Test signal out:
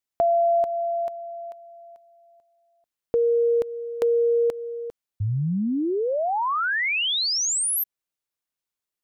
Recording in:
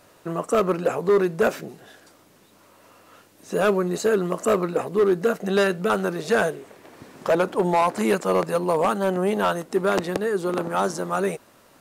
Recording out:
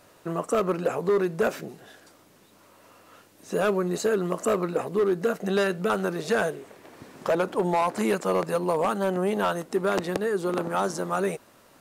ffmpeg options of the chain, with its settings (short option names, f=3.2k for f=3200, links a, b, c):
-af "acompressor=threshold=-20dB:ratio=2,volume=-1.5dB"